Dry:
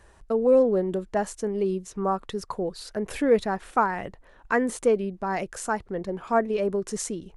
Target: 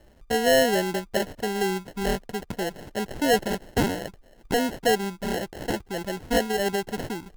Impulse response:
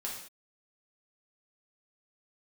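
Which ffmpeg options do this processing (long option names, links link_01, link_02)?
-af "acrusher=samples=37:mix=1:aa=0.000001,asoftclip=type=hard:threshold=-14.5dB"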